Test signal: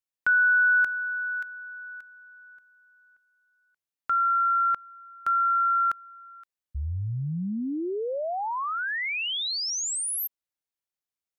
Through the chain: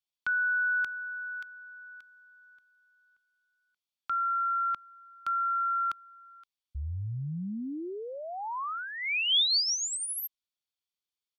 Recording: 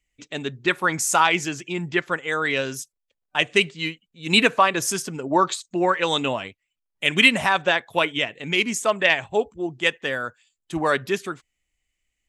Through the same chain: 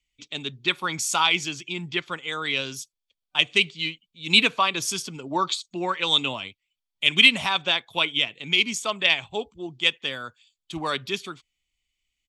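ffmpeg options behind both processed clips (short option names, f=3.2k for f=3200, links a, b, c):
-filter_complex "[0:a]aecho=1:1:0.9:0.3,acrossover=split=330|5400[a][b][c];[b]aexciter=amount=6:drive=2.3:freq=2.7k[d];[a][d][c]amix=inputs=3:normalize=0,volume=-6.5dB"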